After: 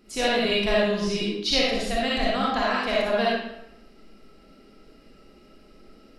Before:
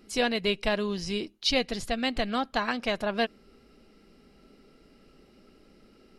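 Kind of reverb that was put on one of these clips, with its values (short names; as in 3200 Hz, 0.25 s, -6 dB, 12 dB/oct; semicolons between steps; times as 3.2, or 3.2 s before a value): digital reverb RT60 0.81 s, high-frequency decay 0.8×, pre-delay 15 ms, DRR -6 dB; gain -2 dB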